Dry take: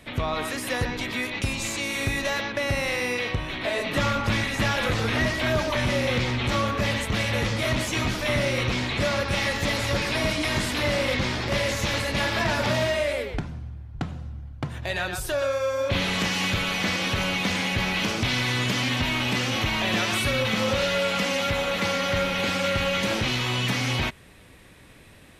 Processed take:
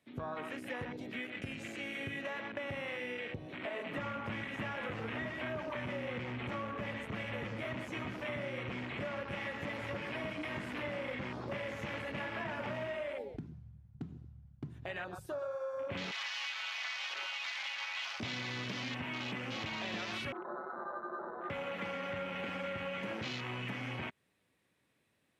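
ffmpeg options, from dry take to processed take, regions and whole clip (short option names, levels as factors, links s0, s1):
-filter_complex "[0:a]asettb=1/sr,asplit=3[s0][s1][s2];[s0]atrim=end=16.114[s3];[s1]atrim=start=16.11:end=18.2,asetpts=PTS-STARTPTS,afade=t=in:d=0.004:c=qsin,afade=t=out:st=2.086:d=0.004:c=qsin,highpass=870,aecho=1:1:7.5:0.58,atrim=end_sample=92169[s4];[s2]atrim=start=18.196[s5];[s3][s4]acrossfade=d=0.004:c1=hsin:c2=qsin[s6];[s6][s5]acrossfade=d=0.004:c1=qsin:c2=hsin,asettb=1/sr,asplit=3[s7][s8][s9];[s7]atrim=end=20.324[s10];[s8]atrim=start=20.32:end=21.5,asetpts=PTS-STARTPTS,afade=t=in:d=0.004:c=qsin,afade=t=out:st=1.176:d=0.004:c=qsin,highpass=f=1100:w=0.5412,highpass=f=1100:w=1.3066,aecho=1:1:6.3:0.66,atrim=end_sample=52038,lowpass=f=2200:t=q:w=0.5098,lowpass=f=2200:t=q:w=0.6013,lowpass=f=2200:t=q:w=0.9,lowpass=f=2200:t=q:w=2.563,afreqshift=-2600[s11];[s9]atrim=start=21.496[s12];[s10][s11]acrossfade=d=0.004:c1=hsin:c2=qsin[s13];[s13][s12]acrossfade=d=0.004:c1=qsin:c2=hsin,highpass=130,afwtdn=0.0355,acompressor=threshold=0.0355:ratio=3,volume=0.376"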